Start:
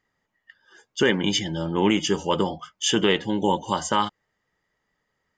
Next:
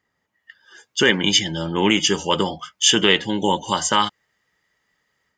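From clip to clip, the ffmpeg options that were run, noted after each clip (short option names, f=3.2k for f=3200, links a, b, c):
-filter_complex "[0:a]highpass=41,acrossover=split=1500[a][b];[b]dynaudnorm=f=310:g=3:m=7.5dB[c];[a][c]amix=inputs=2:normalize=0,volume=1.5dB"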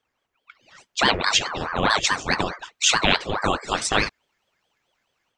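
-af "aeval=exprs='val(0)*sin(2*PI*800*n/s+800*0.8/4.7*sin(2*PI*4.7*n/s))':c=same"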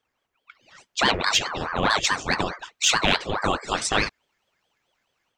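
-af "acontrast=20,volume=-5.5dB"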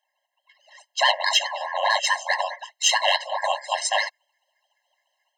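-filter_complex "[0:a]acrossover=split=140[a][b];[a]asoftclip=type=hard:threshold=-32dB[c];[c][b]amix=inputs=2:normalize=0,afftfilt=real='re*eq(mod(floor(b*sr/1024/540),2),1)':imag='im*eq(mod(floor(b*sr/1024/540),2),1)':win_size=1024:overlap=0.75,volume=3.5dB"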